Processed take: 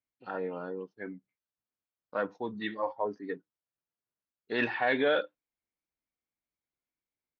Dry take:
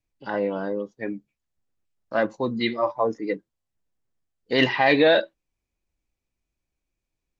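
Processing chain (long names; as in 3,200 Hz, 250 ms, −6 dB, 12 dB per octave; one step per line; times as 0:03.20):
high-pass filter 270 Hz 6 dB per octave
parametric band 1,400 Hz +3.5 dB 0.96 octaves
pitch shifter −1.5 semitones
high-frequency loss of the air 130 metres
level −8.5 dB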